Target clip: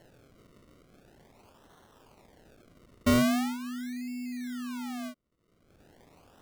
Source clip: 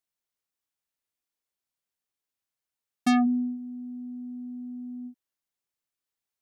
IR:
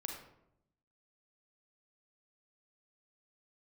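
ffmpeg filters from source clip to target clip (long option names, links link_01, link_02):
-af "acompressor=mode=upward:threshold=-31dB:ratio=2.5,acrusher=samples=36:mix=1:aa=0.000001:lfo=1:lforange=36:lforate=0.42,volume=-1.5dB"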